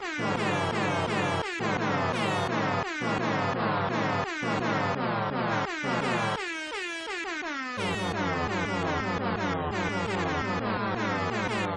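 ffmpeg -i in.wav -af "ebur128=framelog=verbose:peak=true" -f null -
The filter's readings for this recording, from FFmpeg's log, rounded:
Integrated loudness:
  I:         -28.7 LUFS
  Threshold: -38.7 LUFS
Loudness range:
  LRA:         2.1 LU
  Threshold: -48.8 LUFS
  LRA low:   -30.0 LUFS
  LRA high:  -27.9 LUFS
True peak:
  Peak:      -15.6 dBFS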